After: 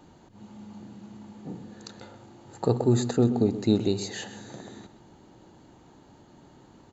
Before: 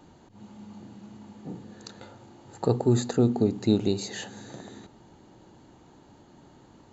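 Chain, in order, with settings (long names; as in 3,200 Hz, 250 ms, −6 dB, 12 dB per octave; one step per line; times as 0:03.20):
slap from a distant wall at 22 metres, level −13 dB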